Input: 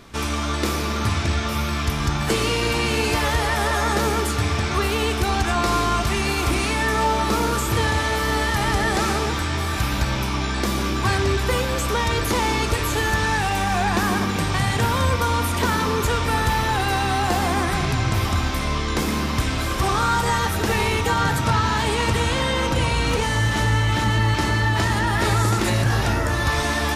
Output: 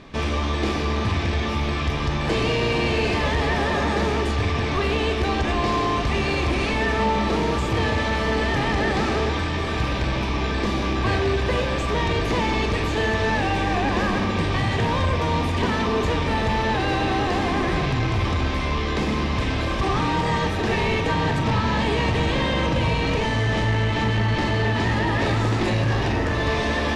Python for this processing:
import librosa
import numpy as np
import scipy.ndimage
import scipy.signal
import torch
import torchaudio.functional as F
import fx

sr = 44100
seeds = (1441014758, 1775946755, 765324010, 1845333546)

p1 = fx.low_shelf(x, sr, hz=340.0, db=-6.5)
p2 = fx.sample_hold(p1, sr, seeds[0], rate_hz=1100.0, jitter_pct=0)
p3 = p1 + (p2 * 10.0 ** (-2.5 / 20.0))
p4 = 10.0 ** (-18.0 / 20.0) * np.tanh(p3 / 10.0 ** (-18.0 / 20.0))
p5 = scipy.signal.sosfilt(scipy.signal.butter(2, 3800.0, 'lowpass', fs=sr, output='sos'), p4)
p6 = fx.notch(p5, sr, hz=1400.0, q=5.2)
p7 = fx.doubler(p6, sr, ms=43.0, db=-11)
y = p7 * 10.0 ** (2.0 / 20.0)